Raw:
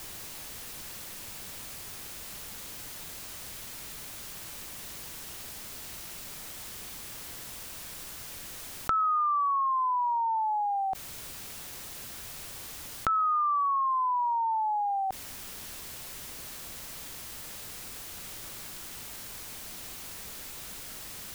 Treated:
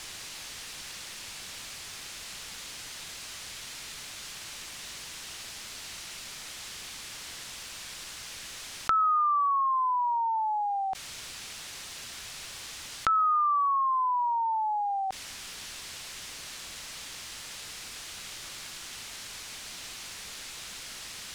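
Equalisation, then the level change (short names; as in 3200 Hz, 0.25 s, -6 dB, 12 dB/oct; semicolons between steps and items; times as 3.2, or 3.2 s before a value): air absorption 68 m; tilt shelf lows -6.5 dB, about 1300 Hz; +2.5 dB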